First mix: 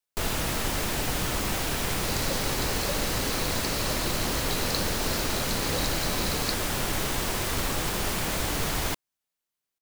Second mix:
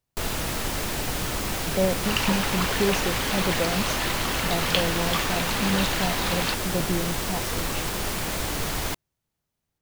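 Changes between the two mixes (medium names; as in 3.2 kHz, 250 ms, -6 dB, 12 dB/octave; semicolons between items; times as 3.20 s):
speech: unmuted; second sound: remove brick-wall FIR band-stop 640–3800 Hz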